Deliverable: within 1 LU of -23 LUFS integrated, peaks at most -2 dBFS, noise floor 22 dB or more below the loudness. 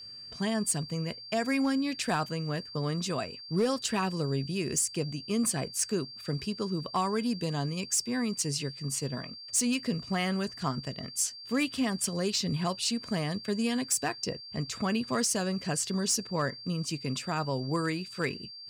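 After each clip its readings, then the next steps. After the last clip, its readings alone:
clipped samples 0.1%; clipping level -20.5 dBFS; steady tone 4.7 kHz; tone level -43 dBFS; loudness -30.5 LUFS; peak level -20.5 dBFS; loudness target -23.0 LUFS
-> clip repair -20.5 dBFS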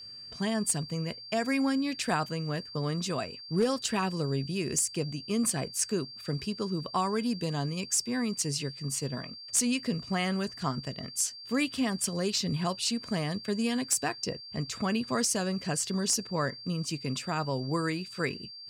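clipped samples 0.0%; steady tone 4.7 kHz; tone level -43 dBFS
-> band-stop 4.7 kHz, Q 30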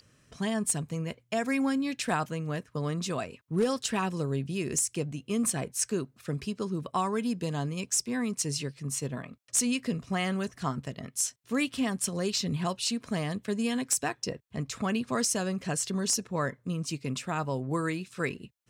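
steady tone not found; loudness -31.0 LUFS; peak level -12.0 dBFS; loudness target -23.0 LUFS
-> trim +8 dB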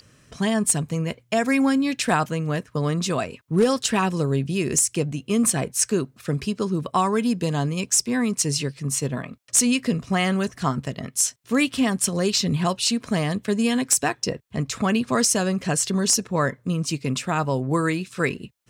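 loudness -23.0 LUFS; peak level -4.0 dBFS; noise floor -58 dBFS

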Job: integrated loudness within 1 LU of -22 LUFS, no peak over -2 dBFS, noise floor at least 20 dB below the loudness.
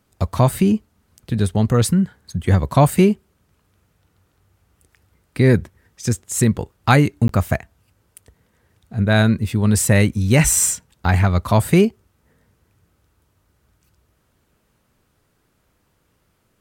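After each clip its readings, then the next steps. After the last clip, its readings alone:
dropouts 1; longest dropout 13 ms; loudness -18.0 LUFS; peak level -2.0 dBFS; loudness target -22.0 LUFS
-> interpolate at 7.28 s, 13 ms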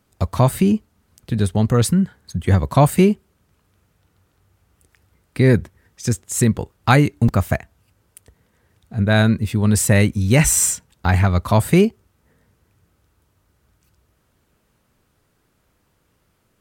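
dropouts 0; loudness -18.0 LUFS; peak level -2.0 dBFS; loudness target -22.0 LUFS
-> trim -4 dB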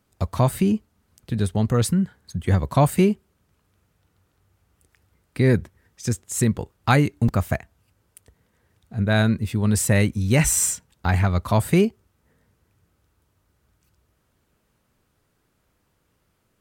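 loudness -22.0 LUFS; peak level -6.0 dBFS; noise floor -69 dBFS

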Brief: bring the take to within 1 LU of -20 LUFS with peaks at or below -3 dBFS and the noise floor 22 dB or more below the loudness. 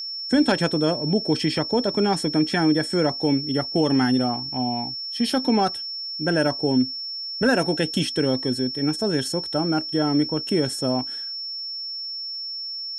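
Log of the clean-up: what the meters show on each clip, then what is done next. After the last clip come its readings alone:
tick rate 31 per s; steady tone 5.4 kHz; tone level -29 dBFS; loudness -23.0 LUFS; peak level -7.5 dBFS; loudness target -20.0 LUFS
-> de-click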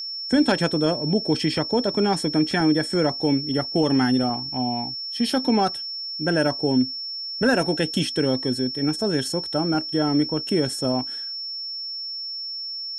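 tick rate 0 per s; steady tone 5.4 kHz; tone level -29 dBFS
-> band-stop 5.4 kHz, Q 30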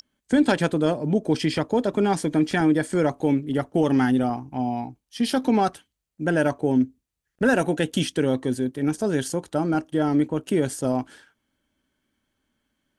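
steady tone not found; loudness -23.5 LUFS; peak level -8.0 dBFS; loudness target -20.0 LUFS
-> trim +3.5 dB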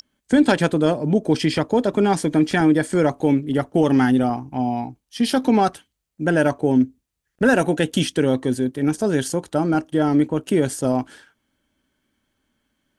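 loudness -20.0 LUFS; peak level -4.5 dBFS; noise floor -78 dBFS

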